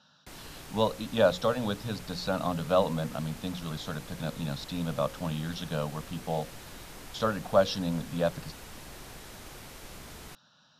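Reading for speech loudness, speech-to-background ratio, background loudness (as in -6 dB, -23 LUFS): -31.0 LUFS, 15.0 dB, -46.0 LUFS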